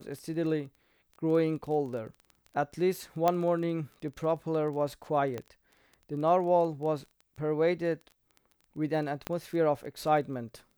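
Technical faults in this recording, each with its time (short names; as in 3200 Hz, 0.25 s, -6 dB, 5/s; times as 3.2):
crackle 16/s -38 dBFS
3.28 pop -13 dBFS
5.38 pop -22 dBFS
9.27 pop -17 dBFS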